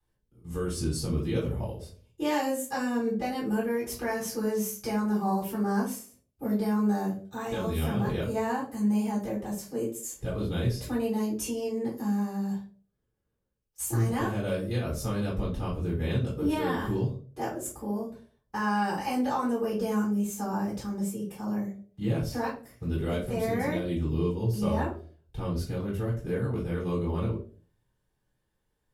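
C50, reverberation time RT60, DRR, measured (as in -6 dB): 7.0 dB, 0.45 s, -10.0 dB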